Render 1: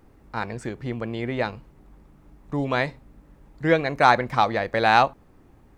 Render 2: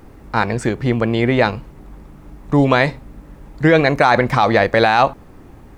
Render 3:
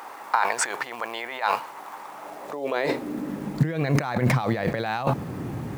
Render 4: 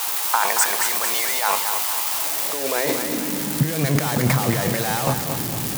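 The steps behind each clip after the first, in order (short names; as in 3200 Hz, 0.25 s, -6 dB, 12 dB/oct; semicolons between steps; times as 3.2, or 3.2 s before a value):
maximiser +14 dB; gain -1.5 dB
short-mantissa float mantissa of 4-bit; negative-ratio compressor -25 dBFS, ratio -1; high-pass sweep 910 Hz -> 130 Hz, 2.04–3.87
switching spikes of -15 dBFS; lo-fi delay 0.227 s, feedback 55%, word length 7-bit, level -7 dB; gain +1.5 dB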